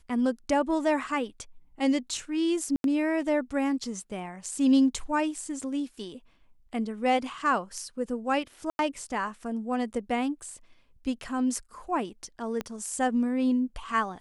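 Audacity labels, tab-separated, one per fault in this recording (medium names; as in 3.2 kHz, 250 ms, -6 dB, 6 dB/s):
2.760000	2.840000	dropout 82 ms
8.700000	8.790000	dropout 91 ms
12.610000	12.610000	pop -18 dBFS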